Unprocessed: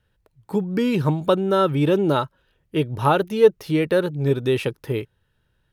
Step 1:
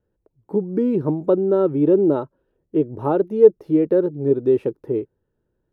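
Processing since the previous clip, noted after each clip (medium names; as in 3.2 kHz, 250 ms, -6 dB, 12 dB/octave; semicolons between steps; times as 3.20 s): FFT filter 130 Hz 0 dB, 350 Hz +13 dB, 3.2 kHz -16 dB; trim -7 dB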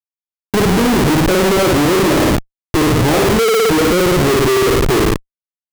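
flutter echo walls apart 9.6 m, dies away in 0.81 s; Schmitt trigger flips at -27 dBFS; trim +6 dB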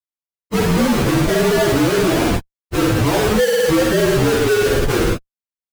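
frequency axis rescaled in octaves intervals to 115%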